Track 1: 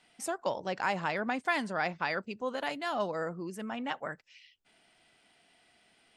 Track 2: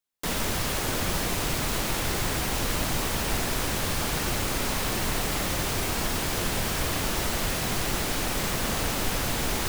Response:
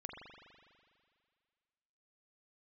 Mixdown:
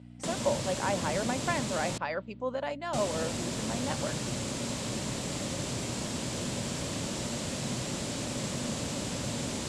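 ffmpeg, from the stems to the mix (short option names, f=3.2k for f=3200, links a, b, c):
-filter_complex "[0:a]volume=-4dB[a];[1:a]acrossover=split=350|3000[b][c][d];[c]acompressor=threshold=-42dB:ratio=6[e];[b][e][d]amix=inputs=3:normalize=0,volume=-4dB,asplit=3[f][g][h];[f]atrim=end=1.98,asetpts=PTS-STARTPTS,afade=t=out:st=1.976:d=0.004:c=hsin[i];[g]atrim=start=1.98:end=2.93,asetpts=PTS-STARTPTS,volume=0[j];[h]atrim=start=2.93,asetpts=PTS-STARTPTS,afade=t=in:d=0.004:c=hsin[k];[i][j][k]concat=n=3:v=0:a=1,asplit=2[l][m];[m]volume=-15dB[n];[2:a]atrim=start_sample=2205[o];[n][o]afir=irnorm=-1:irlink=0[p];[a][l][p]amix=inputs=3:normalize=0,highshelf=f=7.7k:g=-9.5,aeval=exprs='val(0)+0.00562*(sin(2*PI*60*n/s)+sin(2*PI*2*60*n/s)/2+sin(2*PI*3*60*n/s)/3+sin(2*PI*4*60*n/s)/4+sin(2*PI*5*60*n/s)/5)':c=same,highpass=110,equalizer=f=130:t=q:w=4:g=4,equalizer=f=240:t=q:w=4:g=5,equalizer=f=570:t=q:w=4:g=10,equalizer=f=980:t=q:w=4:g=4,equalizer=f=7.5k:t=q:w=4:g=7,lowpass=f=9.9k:w=0.5412,lowpass=f=9.9k:w=1.3066"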